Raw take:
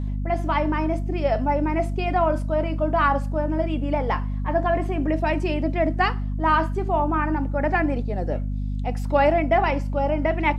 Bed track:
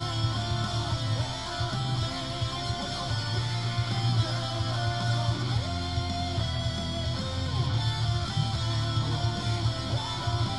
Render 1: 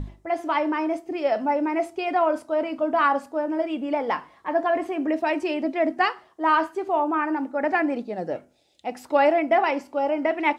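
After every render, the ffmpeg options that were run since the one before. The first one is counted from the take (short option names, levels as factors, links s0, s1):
-af "bandreject=f=50:t=h:w=6,bandreject=f=100:t=h:w=6,bandreject=f=150:t=h:w=6,bandreject=f=200:t=h:w=6,bandreject=f=250:t=h:w=6"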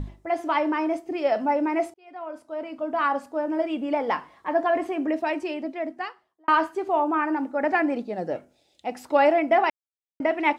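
-filter_complex "[0:a]asplit=5[s0][s1][s2][s3][s4];[s0]atrim=end=1.94,asetpts=PTS-STARTPTS,afade=t=out:st=1.936:d=0.004:c=hsin[s5];[s1]atrim=start=1.94:end=6.48,asetpts=PTS-STARTPTS,afade=t=in:d=1.65,afade=t=out:st=2.96:d=1.58[s6];[s2]atrim=start=6.48:end=9.7,asetpts=PTS-STARTPTS,afade=t=in:d=0.004:c=hsin,afade=t=out:st=3.216:d=0.004:c=hsin[s7];[s3]atrim=start=9.7:end=10.2,asetpts=PTS-STARTPTS,volume=0[s8];[s4]atrim=start=10.2,asetpts=PTS-STARTPTS,afade=t=in:d=0.004:c=hsin[s9];[s5][s6][s7][s8][s9]concat=n=5:v=0:a=1"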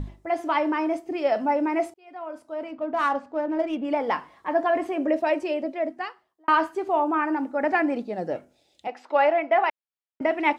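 -filter_complex "[0:a]asettb=1/sr,asplit=3[s0][s1][s2];[s0]atrim=end=2.684[s3];[s1]atrim=start=2.68:end=3.85,asetpts=PTS-STARTPTS,afade=t=in:d=0.004:c=qsin,afade=t=out:st=1.166:d=0.004:c=qsin,adynamicsmooth=sensitivity=6.5:basefreq=3100[s4];[s2]atrim=start=3.846[s5];[s3][s4]acrossfade=d=0.004:c1=hsin:c2=qsin[s6];[s6][s5]acrossfade=d=0.004:c1=qsin:c2=hsin,asettb=1/sr,asplit=3[s7][s8][s9];[s7]atrim=end=4.934[s10];[s8]atrim=start=4.93:end=5.89,asetpts=PTS-STARTPTS,afade=t=in:d=0.004:c=qsin,afade=t=out:st=0.956:d=0.004:c=qsin,equalizer=f=570:w=6.3:g=12[s11];[s9]atrim=start=5.886[s12];[s10][s11]acrossfade=d=0.004:c1=hsin:c2=qsin[s13];[s13][s12]acrossfade=d=0.004:c1=qsin:c2=hsin,asettb=1/sr,asplit=3[s14][s15][s16];[s14]atrim=end=8.874[s17];[s15]atrim=start=8.87:end=10.21,asetpts=PTS-STARTPTS,afade=t=in:d=0.004:c=qsin,afade=t=out:st=1.336:d=0.004:c=qsin,highpass=480,lowpass=3400[s18];[s16]atrim=start=10.206[s19];[s17][s18]acrossfade=d=0.004:c1=hsin:c2=qsin[s20];[s20][s19]acrossfade=d=0.004:c1=qsin:c2=hsin"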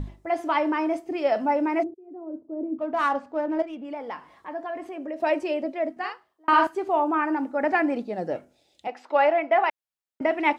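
-filter_complex "[0:a]asplit=3[s0][s1][s2];[s0]afade=t=out:st=1.82:d=0.02[s3];[s1]lowpass=f=360:t=q:w=3.3,afade=t=in:st=1.82:d=0.02,afade=t=out:st=2.78:d=0.02[s4];[s2]afade=t=in:st=2.78:d=0.02[s5];[s3][s4][s5]amix=inputs=3:normalize=0,asettb=1/sr,asplit=3[s6][s7][s8];[s6]atrim=end=3.624[s9];[s7]atrim=start=3.62:end=5.2,asetpts=PTS-STARTPTS,afade=t=in:d=0.004:c=qsin,afade=t=out:st=1.576:d=0.004:c=qsin,acompressor=threshold=0.00398:ratio=1.5:attack=3.2:release=140:knee=1:detection=peak[s10];[s8]atrim=start=5.196[s11];[s9][s10]acrossfade=d=0.004:c1=hsin:c2=qsin[s12];[s12][s11]acrossfade=d=0.004:c1=qsin:c2=hsin,asettb=1/sr,asplit=3[s13][s14][s15];[s13]atrim=end=5.924[s16];[s14]atrim=start=5.92:end=6.67,asetpts=PTS-STARTPTS,afade=t=in:d=0.004:c=qsin,afade=t=out:st=0.746:d=0.004:c=qsin,asplit=2[s17][s18];[s18]adelay=45,volume=0.708[s19];[s17][s19]amix=inputs=2:normalize=0,atrim=end_sample=33075[s20];[s15]atrim=start=6.666[s21];[s16][s20]acrossfade=d=0.004:c1=hsin:c2=qsin[s22];[s22][s21]acrossfade=d=0.004:c1=qsin:c2=hsin"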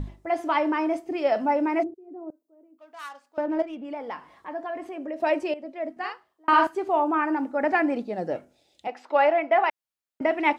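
-filter_complex "[0:a]asettb=1/sr,asplit=3[s0][s1][s2];[s0]atrim=end=2.304[s3];[s1]atrim=start=2.3:end=3.38,asetpts=PTS-STARTPTS,afade=t=in:d=0.004:c=qsin,afade=t=out:st=1.076:d=0.004:c=qsin,aderivative[s4];[s2]atrim=start=3.376[s5];[s3][s4]acrossfade=d=0.004:c1=hsin:c2=qsin[s6];[s6][s5]acrossfade=d=0.004:c1=qsin:c2=hsin,asplit=2[s7][s8];[s7]atrim=end=5.54,asetpts=PTS-STARTPTS,afade=t=out:st=5.536:d=0.004:c=hsin:silence=0.199526[s9];[s8]atrim=start=5.54,asetpts=PTS-STARTPTS,afade=t=in:d=0.57:silence=0.199526[s10];[s9][s10]concat=n=2:v=0:a=1"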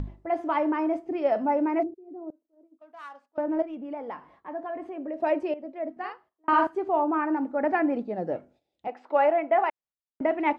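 -af "lowpass=f=1100:p=1,agate=range=0.282:threshold=0.00158:ratio=16:detection=peak"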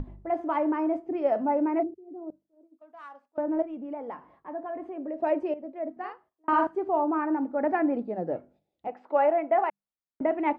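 -af "highshelf=f=2200:g=-11,bandreject=f=50:t=h:w=6,bandreject=f=100:t=h:w=6,bandreject=f=150:t=h:w=6,bandreject=f=200:t=h:w=6"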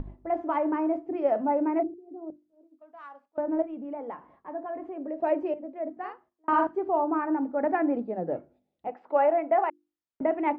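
-af "aemphasis=mode=reproduction:type=50fm,bandreject=f=50:t=h:w=6,bandreject=f=100:t=h:w=6,bandreject=f=150:t=h:w=6,bandreject=f=200:t=h:w=6,bandreject=f=250:t=h:w=6,bandreject=f=300:t=h:w=6,bandreject=f=350:t=h:w=6"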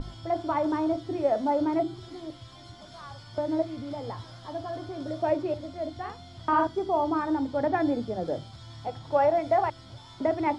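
-filter_complex "[1:a]volume=0.15[s0];[0:a][s0]amix=inputs=2:normalize=0"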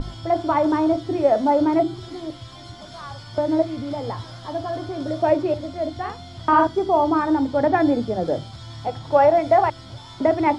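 -af "volume=2.37"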